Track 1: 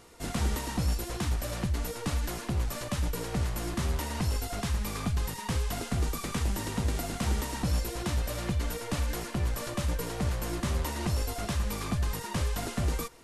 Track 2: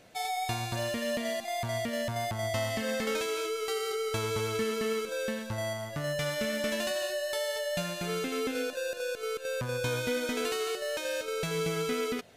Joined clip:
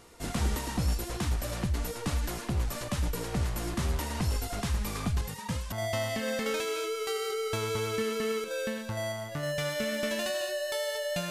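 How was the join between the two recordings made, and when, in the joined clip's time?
track 1
5.21–5.72 s: cancelling through-zero flanger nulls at 0.3 Hz, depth 3.3 ms
5.72 s: go over to track 2 from 2.33 s

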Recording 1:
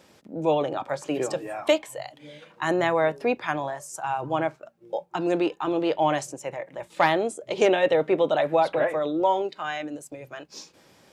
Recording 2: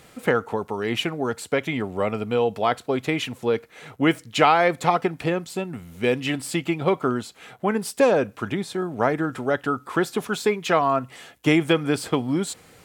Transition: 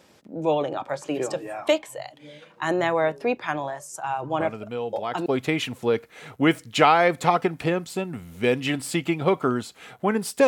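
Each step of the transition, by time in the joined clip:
recording 1
4.40 s: add recording 2 from 2.00 s 0.86 s -8.5 dB
5.26 s: go over to recording 2 from 2.86 s

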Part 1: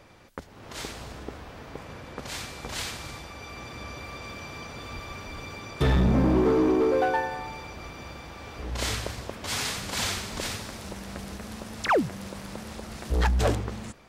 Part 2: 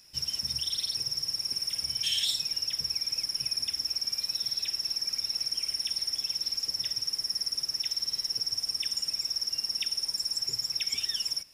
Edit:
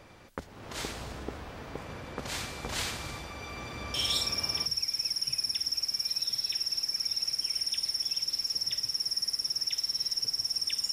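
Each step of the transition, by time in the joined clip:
part 1
4.30 s: go over to part 2 from 2.43 s, crossfade 0.72 s logarithmic

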